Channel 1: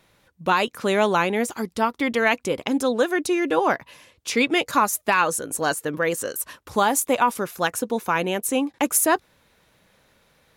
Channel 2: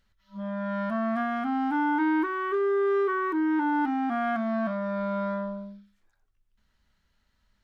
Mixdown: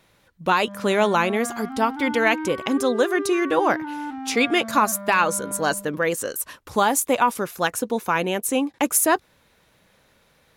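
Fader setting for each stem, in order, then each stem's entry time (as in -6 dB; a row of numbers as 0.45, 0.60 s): +0.5, -5.5 dB; 0.00, 0.25 s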